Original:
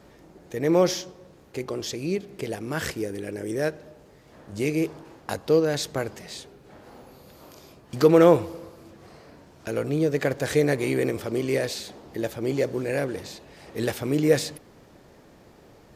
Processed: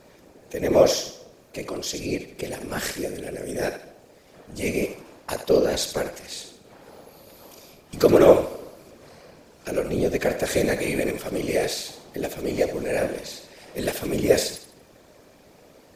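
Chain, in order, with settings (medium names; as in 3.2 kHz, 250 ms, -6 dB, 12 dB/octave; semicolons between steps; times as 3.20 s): high-pass 90 Hz; treble shelf 3.4 kHz +7 dB; small resonant body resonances 540/2400 Hz, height 7 dB; whisper effect; on a send: thinning echo 77 ms, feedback 36%, level -9 dB; on the sum: trim -1.5 dB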